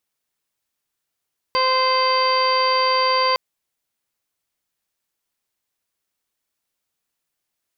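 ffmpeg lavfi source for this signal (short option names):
-f lavfi -i "aevalsrc='0.0794*sin(2*PI*518*t)+0.126*sin(2*PI*1036*t)+0.0237*sin(2*PI*1554*t)+0.0447*sin(2*PI*2072*t)+0.0251*sin(2*PI*2590*t)+0.0251*sin(2*PI*3108*t)+0.01*sin(2*PI*3626*t)+0.00841*sin(2*PI*4144*t)+0.0708*sin(2*PI*4662*t)':d=1.81:s=44100"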